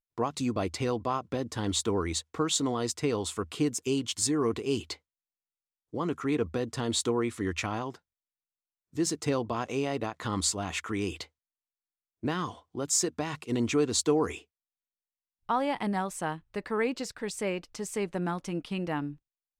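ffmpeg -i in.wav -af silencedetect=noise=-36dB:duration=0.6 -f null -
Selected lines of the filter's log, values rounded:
silence_start: 4.94
silence_end: 5.94 | silence_duration: 1.00
silence_start: 7.94
silence_end: 8.97 | silence_duration: 1.03
silence_start: 11.23
silence_end: 12.23 | silence_duration: 1.00
silence_start: 14.36
silence_end: 15.49 | silence_duration: 1.13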